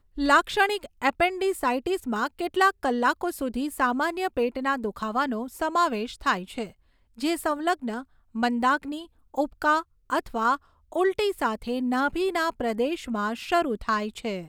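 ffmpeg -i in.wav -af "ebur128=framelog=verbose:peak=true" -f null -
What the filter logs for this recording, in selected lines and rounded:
Integrated loudness:
  I:         -26.1 LUFS
  Threshold: -36.4 LUFS
Loudness range:
  LRA:         2.7 LU
  Threshold: -46.7 LUFS
  LRA low:   -28.1 LUFS
  LRA high:  -25.4 LUFS
True peak:
  Peak:       -7.4 dBFS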